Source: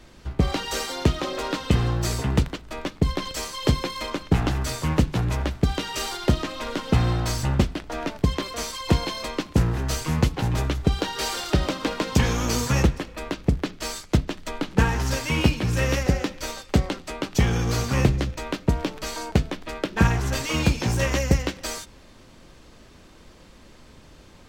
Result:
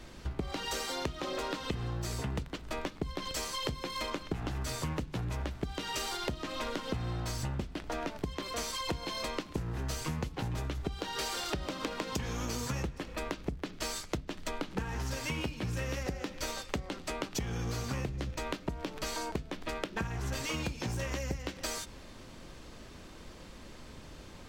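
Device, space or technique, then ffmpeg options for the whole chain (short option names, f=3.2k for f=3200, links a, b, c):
serial compression, leveller first: -af "acompressor=threshold=-24dB:ratio=2,acompressor=threshold=-33dB:ratio=5"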